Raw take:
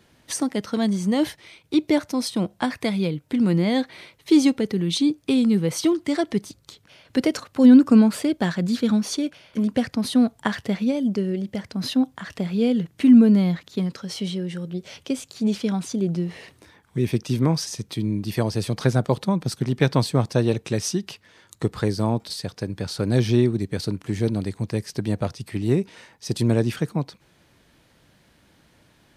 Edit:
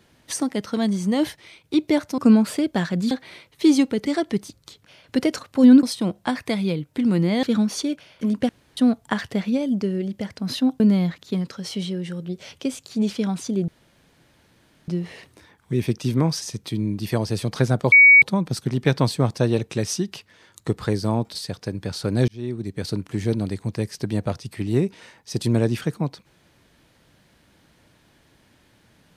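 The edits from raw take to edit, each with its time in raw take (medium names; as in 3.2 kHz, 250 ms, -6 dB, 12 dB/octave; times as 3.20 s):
2.18–3.78 s: swap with 7.84–8.77 s
4.73–6.07 s: delete
9.83–10.11 s: room tone
12.14–13.25 s: delete
16.13 s: insert room tone 1.20 s
19.17 s: add tone 2.25 kHz -7 dBFS 0.30 s
23.23–23.87 s: fade in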